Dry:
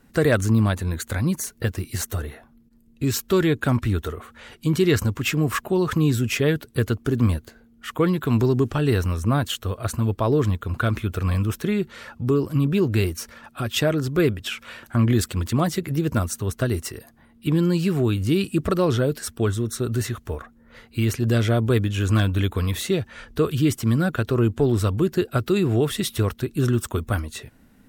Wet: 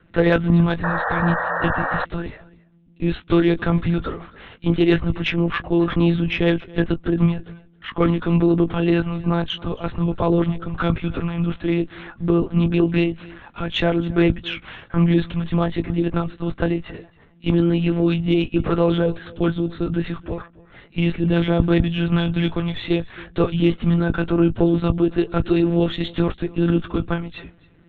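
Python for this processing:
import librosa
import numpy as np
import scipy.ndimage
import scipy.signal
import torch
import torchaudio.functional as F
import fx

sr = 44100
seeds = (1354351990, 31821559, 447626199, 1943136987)

p1 = fx.lpc_monotone(x, sr, seeds[0], pitch_hz=170.0, order=10)
p2 = fx.cheby_harmonics(p1, sr, harmonics=(6,), levels_db=(-31,), full_scale_db=-2.0)
p3 = fx.doubler(p2, sr, ms=18.0, db=-10.5)
p4 = p3 + fx.echo_single(p3, sr, ms=272, db=-22.0, dry=0)
p5 = fx.spec_paint(p4, sr, seeds[1], shape='noise', start_s=0.83, length_s=1.22, low_hz=460.0, high_hz=1900.0, level_db=-25.0)
y = p5 * librosa.db_to_amplitude(1.5)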